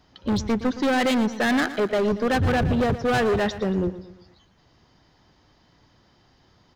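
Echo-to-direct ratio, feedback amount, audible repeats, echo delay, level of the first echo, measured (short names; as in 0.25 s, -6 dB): -13.0 dB, 45%, 4, 0.116 s, -14.0 dB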